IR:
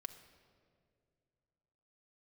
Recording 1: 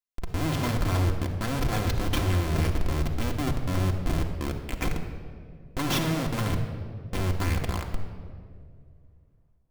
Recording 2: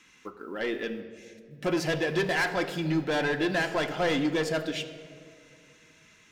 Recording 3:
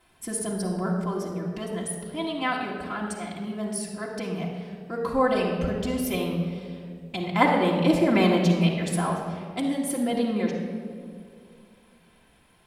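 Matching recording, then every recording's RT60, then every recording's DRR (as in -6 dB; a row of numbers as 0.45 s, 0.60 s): 2; 2.2 s, 2.3 s, 2.2 s; 1.5 dB, 7.0 dB, -5.0 dB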